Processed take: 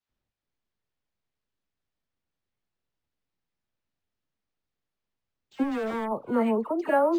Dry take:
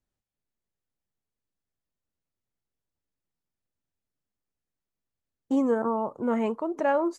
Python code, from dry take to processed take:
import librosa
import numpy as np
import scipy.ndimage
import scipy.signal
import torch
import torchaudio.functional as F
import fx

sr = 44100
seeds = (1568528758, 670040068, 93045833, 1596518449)

y = fx.clip_hard(x, sr, threshold_db=-30.0, at=(5.53, 6.02), fade=0.02)
y = fx.dispersion(y, sr, late='lows', ms=93.0, hz=1800.0)
y = np.interp(np.arange(len(y)), np.arange(len(y))[::4], y[::4])
y = y * librosa.db_to_amplitude(2.0)